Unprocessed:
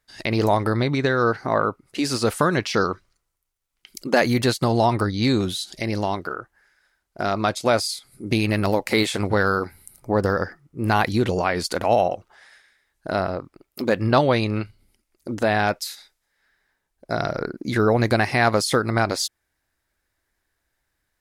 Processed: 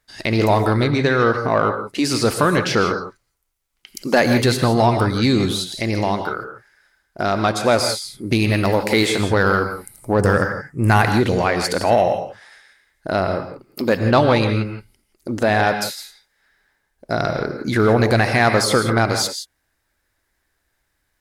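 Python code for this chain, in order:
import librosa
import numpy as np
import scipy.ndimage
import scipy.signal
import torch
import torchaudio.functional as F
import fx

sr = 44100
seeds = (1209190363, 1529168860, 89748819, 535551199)

p1 = fx.graphic_eq(x, sr, hz=(125, 2000, 4000, 8000), db=(6, 6, -8, 12), at=(10.19, 11.02))
p2 = fx.rev_gated(p1, sr, seeds[0], gate_ms=190, shape='rising', drr_db=7.0)
p3 = 10.0 ** (-16.5 / 20.0) * np.tanh(p2 / 10.0 ** (-16.5 / 20.0))
y = p2 + F.gain(torch.from_numpy(p3), -4.0).numpy()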